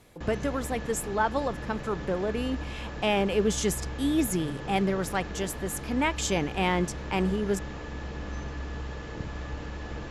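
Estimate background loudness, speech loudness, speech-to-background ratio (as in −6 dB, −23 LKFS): −38.0 LKFS, −29.0 LKFS, 9.0 dB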